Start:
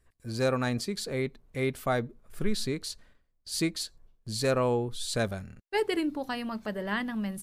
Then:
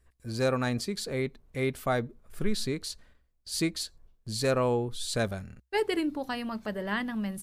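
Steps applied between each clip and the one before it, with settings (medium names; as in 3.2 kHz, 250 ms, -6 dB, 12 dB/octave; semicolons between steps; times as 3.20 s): peaking EQ 63 Hz +8.5 dB 0.24 oct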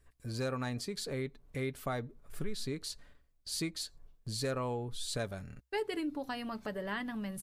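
comb 7 ms, depth 30%; compression 2:1, threshold -39 dBFS, peak gain reduction 10.5 dB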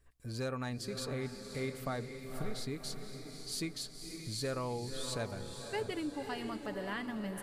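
echo that smears into a reverb 540 ms, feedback 49%, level -7 dB; trim -2 dB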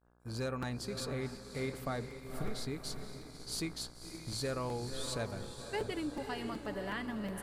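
mains buzz 60 Hz, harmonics 28, -53 dBFS -4 dB/octave; expander -41 dBFS; crackling interface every 0.37 s, samples 256, repeat, from 0.62 s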